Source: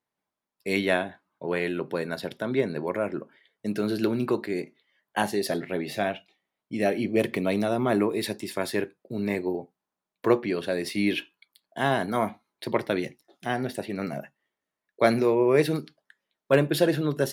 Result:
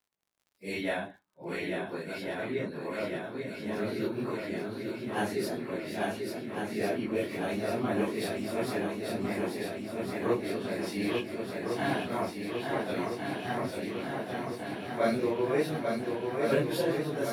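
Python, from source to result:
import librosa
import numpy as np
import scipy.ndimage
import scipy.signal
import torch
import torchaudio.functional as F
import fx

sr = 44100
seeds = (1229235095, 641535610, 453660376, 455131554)

y = fx.phase_scramble(x, sr, seeds[0], window_ms=100)
y = fx.echo_swing(y, sr, ms=1404, ratio=1.5, feedback_pct=68, wet_db=-4.5)
y = fx.dmg_crackle(y, sr, seeds[1], per_s=87.0, level_db=-51.0)
y = F.gain(torch.from_numpy(y), -7.5).numpy()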